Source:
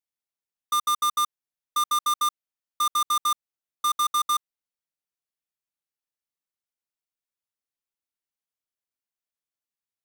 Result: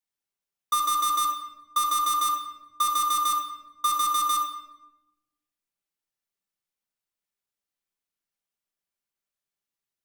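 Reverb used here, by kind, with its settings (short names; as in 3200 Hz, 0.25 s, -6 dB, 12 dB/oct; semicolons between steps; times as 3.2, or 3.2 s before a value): shoebox room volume 430 m³, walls mixed, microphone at 1.2 m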